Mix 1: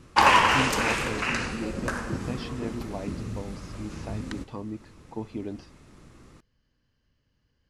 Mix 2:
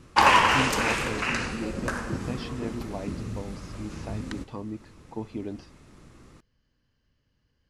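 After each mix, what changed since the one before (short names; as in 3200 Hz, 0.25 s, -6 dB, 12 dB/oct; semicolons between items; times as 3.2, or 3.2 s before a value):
none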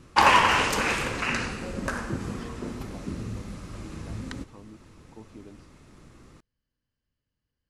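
speech -12.0 dB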